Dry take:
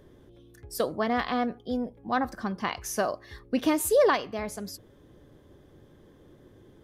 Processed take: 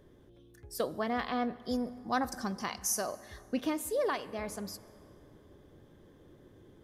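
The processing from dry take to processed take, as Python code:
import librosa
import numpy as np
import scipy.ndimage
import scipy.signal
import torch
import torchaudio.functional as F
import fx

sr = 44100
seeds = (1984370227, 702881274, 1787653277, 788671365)

y = fx.band_shelf(x, sr, hz=8000.0, db=14.0, octaves=1.7, at=(1.62, 3.07))
y = fx.rider(y, sr, range_db=4, speed_s=0.5)
y = fx.rev_plate(y, sr, seeds[0], rt60_s=3.2, hf_ratio=0.55, predelay_ms=0, drr_db=16.5)
y = F.gain(torch.from_numpy(y), -7.0).numpy()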